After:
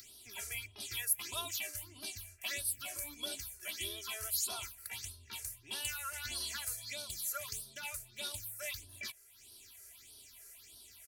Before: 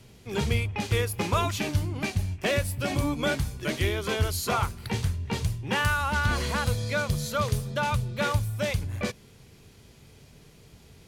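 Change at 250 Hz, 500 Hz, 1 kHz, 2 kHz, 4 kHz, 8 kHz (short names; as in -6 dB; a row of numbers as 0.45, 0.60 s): -27.5, -22.0, -19.5, -14.0, -6.5, 0.0 dB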